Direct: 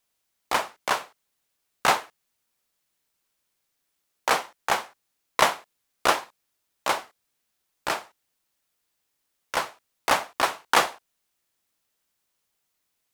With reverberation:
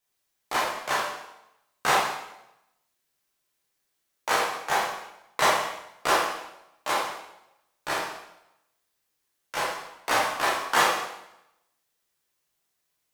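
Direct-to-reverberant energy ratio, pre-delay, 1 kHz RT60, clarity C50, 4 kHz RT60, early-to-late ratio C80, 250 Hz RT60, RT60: -6.5 dB, 5 ms, 0.85 s, 1.5 dB, 0.80 s, 4.5 dB, 0.85 s, 0.85 s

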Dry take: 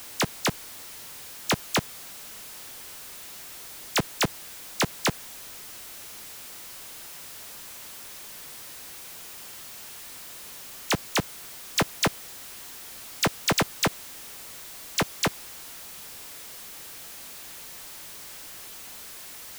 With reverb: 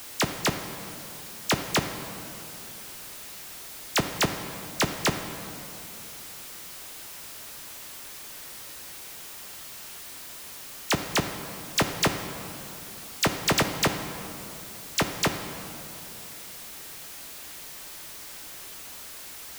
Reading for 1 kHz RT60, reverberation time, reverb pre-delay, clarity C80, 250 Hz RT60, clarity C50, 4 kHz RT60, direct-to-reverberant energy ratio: 2.8 s, 2.9 s, 3 ms, 8.5 dB, 3.1 s, 7.5 dB, 1.6 s, 6.0 dB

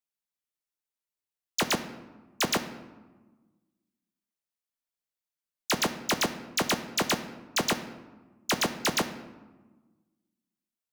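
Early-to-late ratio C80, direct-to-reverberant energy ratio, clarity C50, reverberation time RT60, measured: 13.5 dB, 8.5 dB, 11.5 dB, 1.3 s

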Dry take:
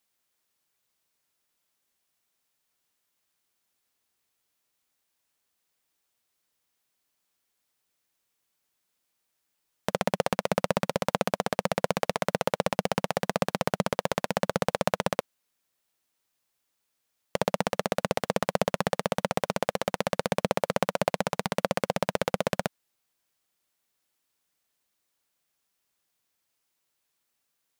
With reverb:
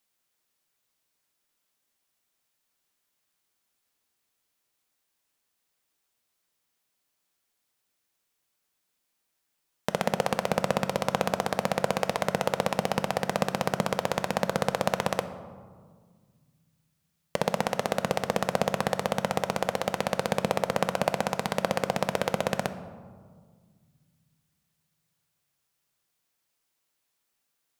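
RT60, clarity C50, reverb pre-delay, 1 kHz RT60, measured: 1.8 s, 12.5 dB, 3 ms, 1.7 s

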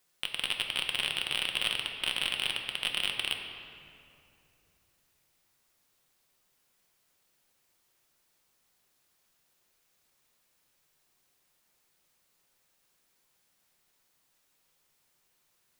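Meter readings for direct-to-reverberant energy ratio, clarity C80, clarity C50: 2.5 dB, 6.0 dB, 5.0 dB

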